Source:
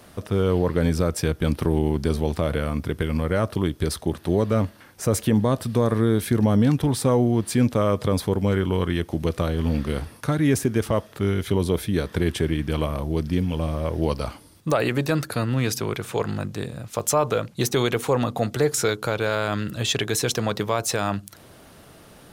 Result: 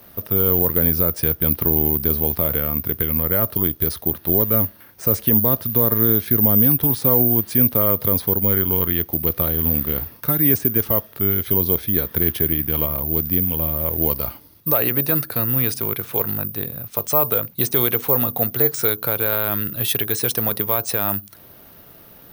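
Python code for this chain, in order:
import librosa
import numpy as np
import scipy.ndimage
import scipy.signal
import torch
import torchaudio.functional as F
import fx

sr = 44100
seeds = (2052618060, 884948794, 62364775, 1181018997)

y = fx.peak_eq(x, sr, hz=8500.0, db=-11.5, octaves=0.33)
y = (np.kron(scipy.signal.resample_poly(y, 1, 3), np.eye(3)[0]) * 3)[:len(y)]
y = y * librosa.db_to_amplitude(-1.5)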